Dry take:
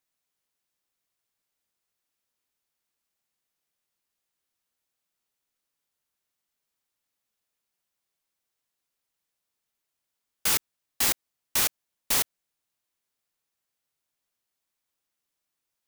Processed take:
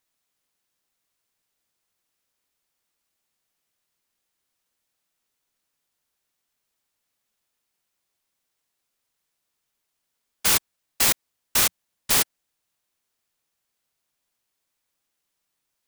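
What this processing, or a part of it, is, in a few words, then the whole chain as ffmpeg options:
octave pedal: -filter_complex "[0:a]asettb=1/sr,asplit=3[a][b][c];[a]atrim=end=11.624[d];[b]atrim=start=11.62:end=12.12,asetpts=PTS-STARTPTS,afade=t=in:d=0.004:c=qsin,afade=t=out:st=0.496:d=0.004:c=qsin,equalizer=f=180:t=o:w=0.36:g=4[e];[c]atrim=start=12.116[f];[d][e]acrossfade=d=0.004:c1=hsin:c2=qsin[g];[g][f]acrossfade=d=0.004:c1=qsin:c2=hsin,asplit=2[h][i];[i]asetrate=22050,aresample=44100,atempo=2,volume=-8dB[j];[h][j]amix=inputs=2:normalize=0,volume=4dB"

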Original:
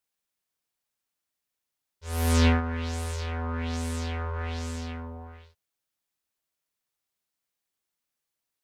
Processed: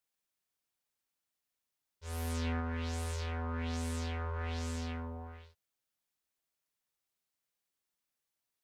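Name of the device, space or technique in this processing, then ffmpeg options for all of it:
compression on the reversed sound: -af "areverse,acompressor=threshold=-31dB:ratio=6,areverse,volume=-3dB"

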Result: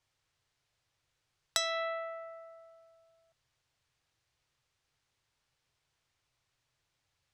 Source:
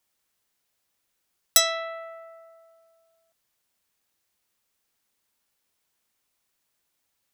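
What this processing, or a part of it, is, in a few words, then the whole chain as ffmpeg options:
jukebox: -af "lowpass=5.6k,lowshelf=f=160:t=q:w=3:g=7,acompressor=threshold=-29dB:ratio=5"

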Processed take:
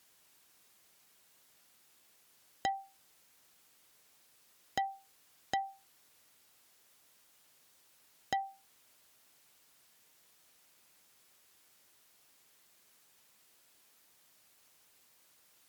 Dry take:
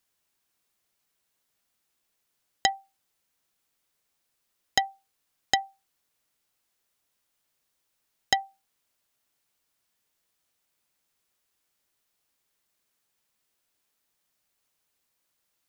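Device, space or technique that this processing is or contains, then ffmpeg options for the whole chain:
podcast mastering chain: -af "highpass=f=100:p=1,deesser=0.7,acompressor=threshold=-40dB:ratio=2,alimiter=level_in=4dB:limit=-24dB:level=0:latency=1:release=159,volume=-4dB,volume=11.5dB" -ar 44100 -c:a libmp3lame -b:a 96k

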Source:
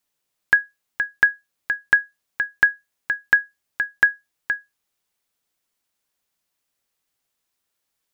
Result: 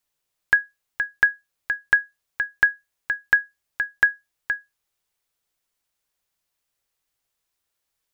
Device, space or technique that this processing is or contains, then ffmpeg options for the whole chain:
low shelf boost with a cut just above: -af "lowshelf=f=85:g=6.5,equalizer=f=230:t=o:w=0.73:g=-5.5,volume=-1.5dB"

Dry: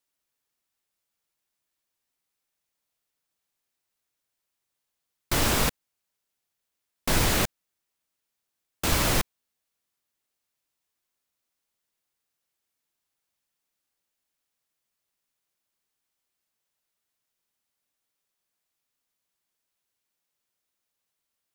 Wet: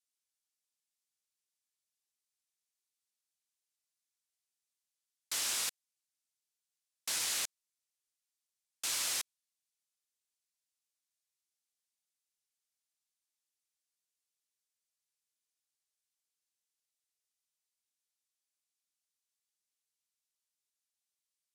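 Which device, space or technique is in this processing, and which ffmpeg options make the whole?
piezo pickup straight into a mixer: -af "lowpass=8.3k,aderivative,volume=-1.5dB"

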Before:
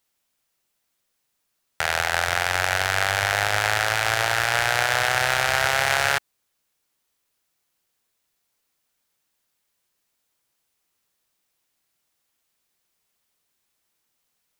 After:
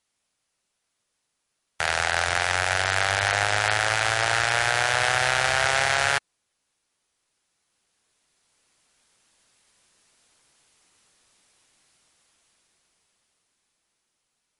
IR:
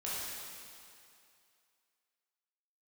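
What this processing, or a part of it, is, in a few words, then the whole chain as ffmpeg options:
low-bitrate web radio: -af "dynaudnorm=f=220:g=21:m=14dB,alimiter=limit=-4.5dB:level=0:latency=1:release=22" -ar 24000 -c:a libmp3lame -b:a 48k

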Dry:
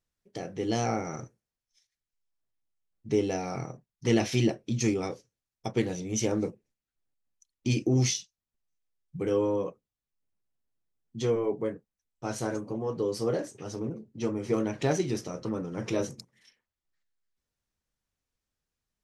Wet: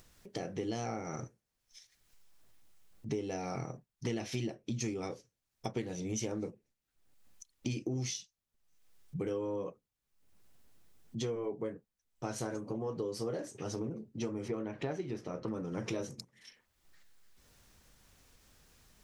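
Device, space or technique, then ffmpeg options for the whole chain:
upward and downward compression: -filter_complex "[0:a]acompressor=mode=upward:threshold=-45dB:ratio=2.5,acompressor=threshold=-35dB:ratio=5,asettb=1/sr,asplit=3[a][b][c];[a]atrim=end=14.484[d];[b]atrim=start=14.48:end=15.48,asetpts=PTS-STARTPTS,afade=t=in:d=0.004:c=qsin,afade=t=out:st=0.996:d=0.004:c=qsin,bass=f=250:g=-2,treble=f=4k:g=-14[e];[c]atrim=start=15.476[f];[d][e]acrossfade=d=0.004:c1=hsin:c2=qsin[g];[g][f]acrossfade=d=0.004:c1=qsin:c2=hsin,volume=1dB"

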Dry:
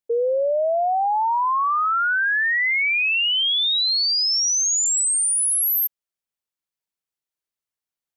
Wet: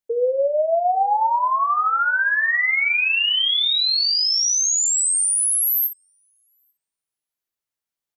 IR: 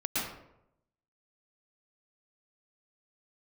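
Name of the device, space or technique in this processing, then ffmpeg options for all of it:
slapback doubling: -filter_complex "[0:a]asplit=3[a][b][c];[b]adelay=18,volume=-8.5dB[d];[c]adelay=61,volume=-11.5dB[e];[a][d][e]amix=inputs=3:normalize=0,asplit=3[f][g][h];[f]afade=t=out:st=0.68:d=0.02[i];[g]equalizer=f=4.1k:w=0.48:g=5.5,afade=t=in:st=0.68:d=0.02,afade=t=out:st=1.33:d=0.02[j];[h]afade=t=in:st=1.33:d=0.02[k];[i][j][k]amix=inputs=3:normalize=0,asplit=2[l][m];[m]adelay=842,lowpass=f=890:p=1,volume=-22dB,asplit=2[n][o];[o]adelay=842,lowpass=f=890:p=1,volume=0.33[p];[l][n][p]amix=inputs=3:normalize=0"

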